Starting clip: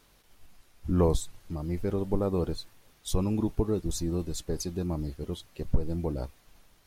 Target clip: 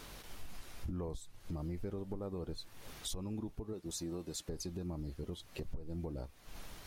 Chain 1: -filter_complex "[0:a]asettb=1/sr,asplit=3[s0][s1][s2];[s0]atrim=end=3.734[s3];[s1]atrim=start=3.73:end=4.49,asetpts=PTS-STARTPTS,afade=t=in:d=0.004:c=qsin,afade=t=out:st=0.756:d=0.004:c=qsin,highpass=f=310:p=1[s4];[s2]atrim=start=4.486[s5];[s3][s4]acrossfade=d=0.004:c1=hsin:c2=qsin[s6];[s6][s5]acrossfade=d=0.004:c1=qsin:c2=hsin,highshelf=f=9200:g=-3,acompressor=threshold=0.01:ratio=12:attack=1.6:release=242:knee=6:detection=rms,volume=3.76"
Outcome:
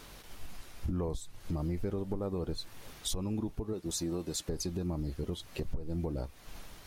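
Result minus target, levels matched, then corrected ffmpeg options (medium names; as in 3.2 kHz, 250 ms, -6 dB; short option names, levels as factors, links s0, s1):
compression: peak gain reduction -6.5 dB
-filter_complex "[0:a]asettb=1/sr,asplit=3[s0][s1][s2];[s0]atrim=end=3.734[s3];[s1]atrim=start=3.73:end=4.49,asetpts=PTS-STARTPTS,afade=t=in:d=0.004:c=qsin,afade=t=out:st=0.756:d=0.004:c=qsin,highpass=f=310:p=1[s4];[s2]atrim=start=4.486[s5];[s3][s4]acrossfade=d=0.004:c1=hsin:c2=qsin[s6];[s6][s5]acrossfade=d=0.004:c1=qsin:c2=hsin,highshelf=f=9200:g=-3,acompressor=threshold=0.00447:ratio=12:attack=1.6:release=242:knee=6:detection=rms,volume=3.76"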